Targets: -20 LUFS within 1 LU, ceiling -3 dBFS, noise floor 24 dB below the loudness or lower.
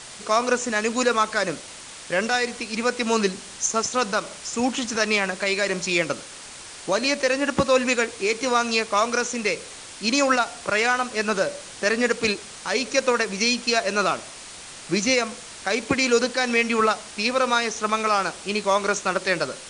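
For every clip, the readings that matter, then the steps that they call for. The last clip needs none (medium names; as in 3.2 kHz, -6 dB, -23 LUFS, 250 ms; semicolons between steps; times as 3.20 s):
noise floor -41 dBFS; noise floor target -47 dBFS; loudness -23.0 LUFS; peak level -7.0 dBFS; loudness target -20.0 LUFS
-> noise reduction 6 dB, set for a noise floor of -41 dBFS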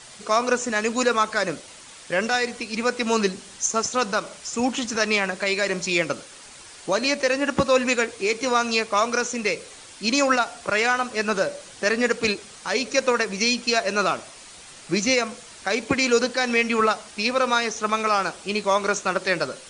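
noise floor -44 dBFS; noise floor target -47 dBFS
-> noise reduction 6 dB, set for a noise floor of -44 dBFS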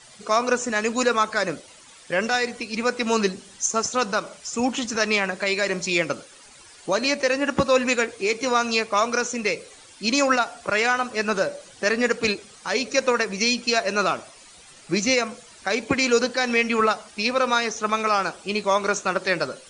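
noise floor -48 dBFS; loudness -23.0 LUFS; peak level -7.0 dBFS; loudness target -20.0 LUFS
-> trim +3 dB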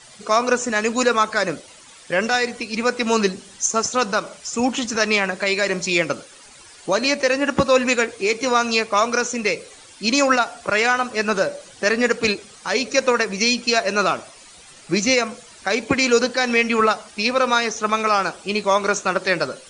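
loudness -20.0 LUFS; peak level -4.0 dBFS; noise floor -45 dBFS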